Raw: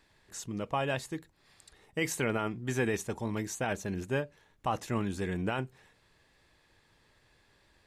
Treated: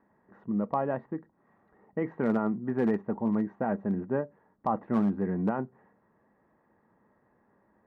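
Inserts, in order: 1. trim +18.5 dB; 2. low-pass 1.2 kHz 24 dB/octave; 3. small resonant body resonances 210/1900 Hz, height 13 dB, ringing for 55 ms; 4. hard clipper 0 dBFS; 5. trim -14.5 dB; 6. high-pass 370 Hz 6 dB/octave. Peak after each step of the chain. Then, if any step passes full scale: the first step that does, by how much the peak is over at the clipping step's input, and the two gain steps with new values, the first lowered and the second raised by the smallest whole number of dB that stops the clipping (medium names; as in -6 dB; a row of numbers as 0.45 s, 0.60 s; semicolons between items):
-0.5 dBFS, -1.5 dBFS, +3.5 dBFS, 0.0 dBFS, -14.5 dBFS, -14.0 dBFS; step 3, 3.5 dB; step 1 +14.5 dB, step 5 -10.5 dB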